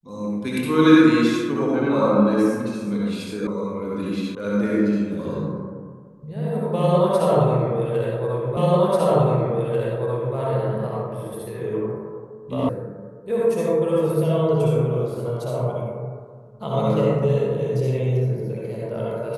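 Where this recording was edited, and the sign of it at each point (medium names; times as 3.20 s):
3.47 s: sound stops dead
4.35 s: sound stops dead
8.57 s: repeat of the last 1.79 s
12.69 s: sound stops dead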